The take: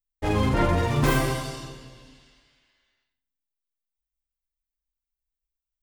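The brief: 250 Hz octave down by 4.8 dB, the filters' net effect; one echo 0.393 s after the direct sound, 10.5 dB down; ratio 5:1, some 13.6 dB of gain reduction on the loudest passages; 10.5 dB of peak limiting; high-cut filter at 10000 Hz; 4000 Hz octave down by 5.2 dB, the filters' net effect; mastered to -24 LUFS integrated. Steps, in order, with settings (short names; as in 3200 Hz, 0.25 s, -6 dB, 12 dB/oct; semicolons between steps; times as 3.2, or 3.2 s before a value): LPF 10000 Hz; bell 250 Hz -7 dB; bell 4000 Hz -7 dB; compressor 5:1, threshold -35 dBFS; limiter -34.5 dBFS; echo 0.393 s -10.5 dB; gain +20.5 dB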